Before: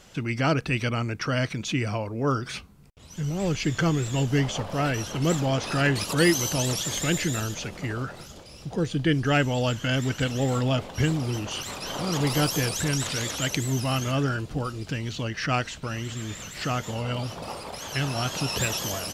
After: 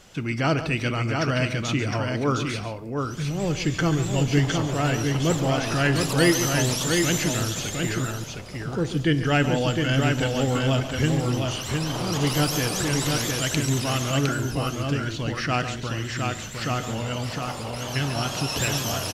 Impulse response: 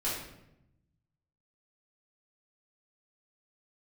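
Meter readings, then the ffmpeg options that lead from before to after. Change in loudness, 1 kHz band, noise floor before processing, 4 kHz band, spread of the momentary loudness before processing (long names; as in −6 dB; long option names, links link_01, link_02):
+2.5 dB, +2.5 dB, −46 dBFS, +2.5 dB, 9 LU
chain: -filter_complex "[0:a]aecho=1:1:139|710:0.251|0.631,asplit=2[link_01][link_02];[1:a]atrim=start_sample=2205[link_03];[link_02][link_03]afir=irnorm=-1:irlink=0,volume=-19dB[link_04];[link_01][link_04]amix=inputs=2:normalize=0"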